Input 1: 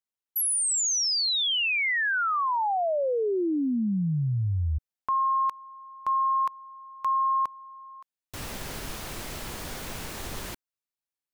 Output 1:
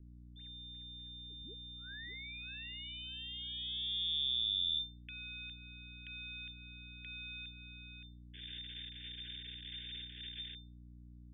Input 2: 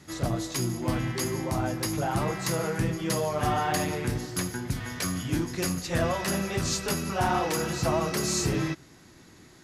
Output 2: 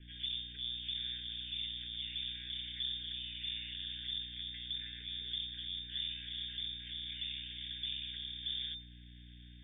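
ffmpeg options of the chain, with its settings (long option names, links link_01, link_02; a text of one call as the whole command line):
ffmpeg -i in.wav -filter_complex "[0:a]acrossover=split=200[link_01][link_02];[link_02]acompressor=threshold=-38dB:ratio=6:attack=2.9:release=184:detection=peak[link_03];[link_01][link_03]amix=inputs=2:normalize=0,aeval=exprs='max(val(0),0)':channel_layout=same,lowpass=frequency=3100:width_type=q:width=0.5098,lowpass=frequency=3100:width_type=q:width=0.6013,lowpass=frequency=3100:width_type=q:width=0.9,lowpass=frequency=3100:width_type=q:width=2.563,afreqshift=-3600,aeval=exprs='val(0)+0.00447*(sin(2*PI*60*n/s)+sin(2*PI*2*60*n/s)/2+sin(2*PI*3*60*n/s)/3+sin(2*PI*4*60*n/s)/4+sin(2*PI*5*60*n/s)/5)':channel_layout=same,asuperstop=centerf=840:order=20:qfactor=0.79,volume=-6dB" out.wav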